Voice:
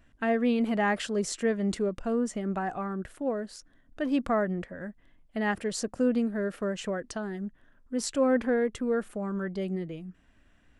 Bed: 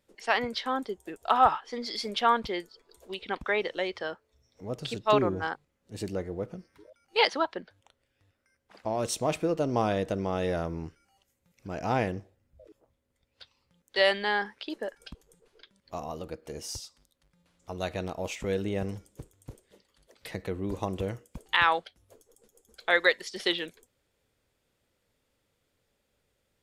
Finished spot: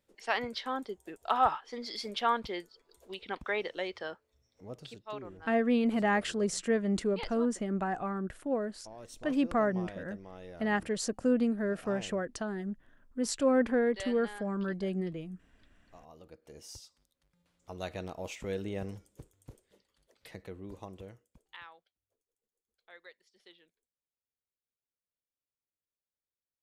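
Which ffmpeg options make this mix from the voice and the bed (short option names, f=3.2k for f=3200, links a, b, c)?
-filter_complex "[0:a]adelay=5250,volume=-1.5dB[a];[1:a]volume=7.5dB,afade=t=out:st=4.38:d=0.7:silence=0.211349,afade=t=in:st=16.02:d=1.38:silence=0.237137,afade=t=out:st=19.46:d=2.25:silence=0.0595662[b];[a][b]amix=inputs=2:normalize=0"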